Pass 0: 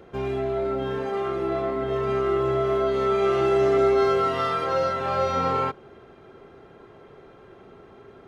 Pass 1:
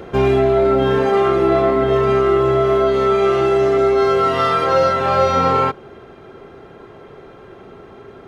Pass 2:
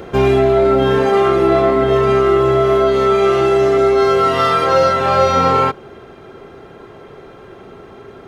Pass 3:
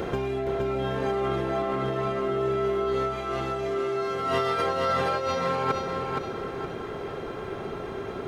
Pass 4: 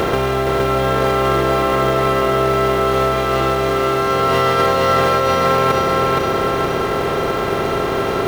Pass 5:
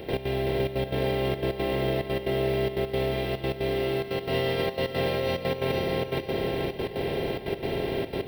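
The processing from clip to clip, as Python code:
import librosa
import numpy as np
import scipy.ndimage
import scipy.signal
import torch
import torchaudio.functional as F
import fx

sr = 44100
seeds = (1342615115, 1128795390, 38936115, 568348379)

y1 = fx.rider(x, sr, range_db=10, speed_s=0.5)
y1 = F.gain(torch.from_numpy(y1), 8.5).numpy()
y2 = fx.high_shelf(y1, sr, hz=4800.0, db=5.0)
y2 = F.gain(torch.from_numpy(y2), 2.0).numpy()
y3 = fx.over_compress(y2, sr, threshold_db=-21.0, ratio=-1.0)
y3 = np.clip(y3, -10.0 ** (-10.0 / 20.0), 10.0 ** (-10.0 / 20.0))
y3 = fx.echo_feedback(y3, sr, ms=468, feedback_pct=38, wet_db=-4)
y3 = F.gain(torch.from_numpy(y3), -6.5).numpy()
y4 = fx.bin_compress(y3, sr, power=0.4)
y4 = fx.quant_companded(y4, sr, bits=6)
y4 = fx.doubler(y4, sr, ms=47.0, db=-11)
y4 = F.gain(torch.from_numpy(y4), 6.5).numpy()
y5 = fx.fixed_phaser(y4, sr, hz=3000.0, stages=4)
y5 = fx.step_gate(y5, sr, bpm=179, pattern='.x.xxxxx', floor_db=-12.0, edge_ms=4.5)
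y5 = y5 + 10.0 ** (-16.5 / 20.0) * np.pad(y5, (int(307 * sr / 1000.0), 0))[:len(y5)]
y5 = F.gain(torch.from_numpy(y5), -7.5).numpy()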